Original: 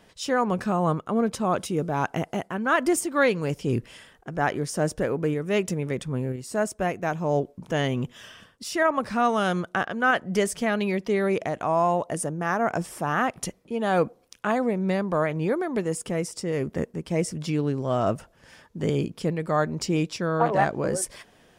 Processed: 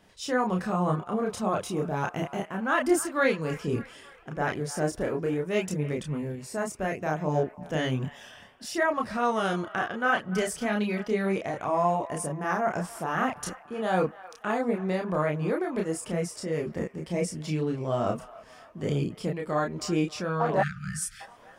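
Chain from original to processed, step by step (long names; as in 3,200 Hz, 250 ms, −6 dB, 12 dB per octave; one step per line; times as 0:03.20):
delay with a band-pass on its return 291 ms, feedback 56%, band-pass 1,400 Hz, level −16 dB
multi-voice chorus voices 2, 0.34 Hz, delay 30 ms, depth 3.3 ms
time-frequency box erased 0:20.63–0:21.20, 210–1,200 Hz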